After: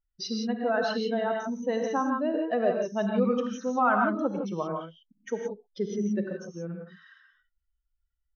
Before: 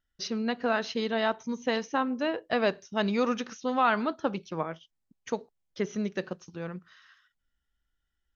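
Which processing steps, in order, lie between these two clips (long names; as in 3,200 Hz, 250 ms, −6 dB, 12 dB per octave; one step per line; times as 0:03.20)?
expanding power law on the bin magnitudes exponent 1.9
reverb whose tail is shaped and stops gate 190 ms rising, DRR 1 dB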